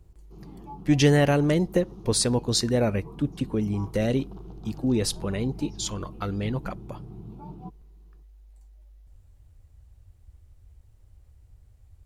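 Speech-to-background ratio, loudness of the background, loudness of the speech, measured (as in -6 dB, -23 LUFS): 18.5 dB, -44.0 LUFS, -25.5 LUFS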